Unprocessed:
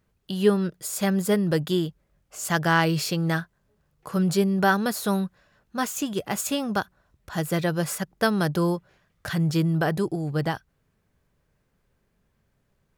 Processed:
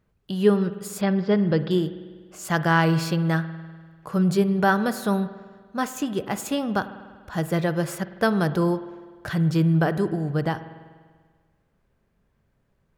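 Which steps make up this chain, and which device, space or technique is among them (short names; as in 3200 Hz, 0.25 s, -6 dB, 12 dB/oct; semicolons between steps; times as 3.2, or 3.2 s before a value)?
1.01–1.71 Chebyshev low-pass 5100 Hz, order 5; behind a face mask (high shelf 3100 Hz -8 dB); spring tank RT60 1.6 s, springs 49 ms, chirp 30 ms, DRR 12.5 dB; gain +1.5 dB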